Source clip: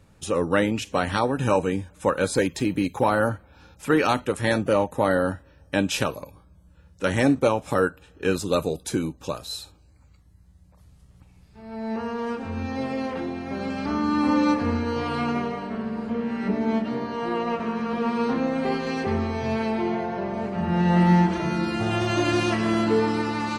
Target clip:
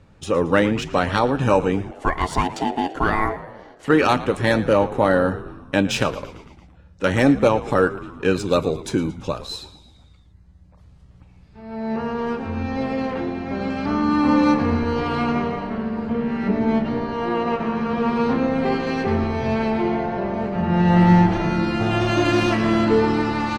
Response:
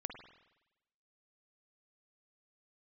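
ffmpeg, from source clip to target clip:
-filter_complex "[0:a]asplit=7[a][b][c][d][e][f][g];[b]adelay=113,afreqshift=-72,volume=-15.5dB[h];[c]adelay=226,afreqshift=-144,volume=-19.8dB[i];[d]adelay=339,afreqshift=-216,volume=-24.1dB[j];[e]adelay=452,afreqshift=-288,volume=-28.4dB[k];[f]adelay=565,afreqshift=-360,volume=-32.7dB[l];[g]adelay=678,afreqshift=-432,volume=-37dB[m];[a][h][i][j][k][l][m]amix=inputs=7:normalize=0,adynamicsmooth=sensitivity=2.5:basefreq=5.4k,asettb=1/sr,asplit=3[n][o][p];[n]atrim=end=1.914[q];[o]atrim=start=1.91:end=3.88,asetpts=PTS-STARTPTS,afade=t=in:d=0.004:c=qsin,afade=t=out:st=1.966:d=0.004:c=qsin,aeval=exprs='val(0)*sin(2*PI*550*n/s)':c=same[r];[p]atrim=start=3.876[s];[q][r]acrossfade=d=0.004:c1=hsin:c2=qsin[t];[t][s]acrossfade=d=0.004:c1=qsin:c2=hsin,volume=4dB"

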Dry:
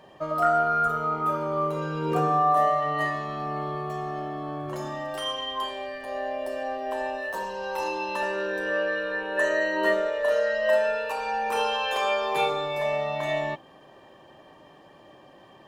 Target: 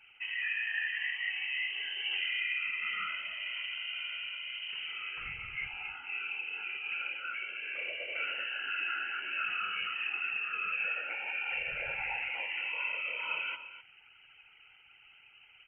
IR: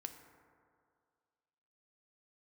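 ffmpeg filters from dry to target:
-filter_complex "[0:a]acrossover=split=150[a][b];[b]alimiter=limit=-19dB:level=0:latency=1:release=118[c];[a][c]amix=inputs=2:normalize=0,aecho=1:1:259:0.251,afftfilt=real='hypot(re,im)*cos(2*PI*random(0))':imag='hypot(re,im)*sin(2*PI*random(1))':win_size=512:overlap=0.75,lowpass=f=2.7k:t=q:w=0.5098,lowpass=f=2.7k:t=q:w=0.6013,lowpass=f=2.7k:t=q:w=0.9,lowpass=f=2.7k:t=q:w=2.563,afreqshift=-3200,volume=-2dB"

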